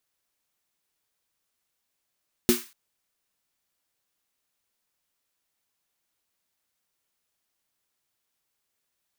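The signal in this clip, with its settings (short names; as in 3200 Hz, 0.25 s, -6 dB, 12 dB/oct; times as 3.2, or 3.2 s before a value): snare drum length 0.24 s, tones 240 Hz, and 360 Hz, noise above 1100 Hz, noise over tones -6.5 dB, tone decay 0.18 s, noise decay 0.36 s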